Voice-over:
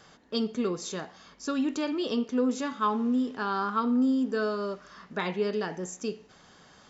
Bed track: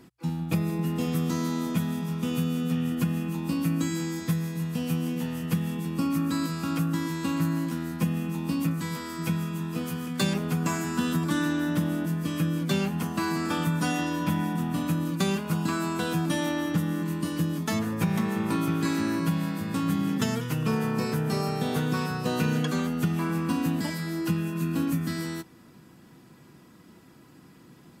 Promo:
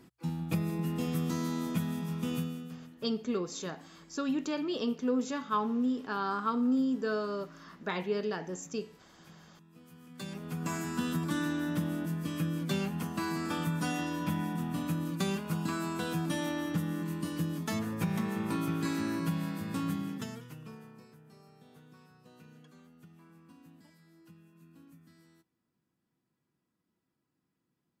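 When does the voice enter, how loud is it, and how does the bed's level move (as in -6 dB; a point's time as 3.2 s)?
2.70 s, -3.5 dB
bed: 2.35 s -5 dB
3.04 s -28 dB
9.65 s -28 dB
10.76 s -6 dB
19.84 s -6 dB
21.18 s -30 dB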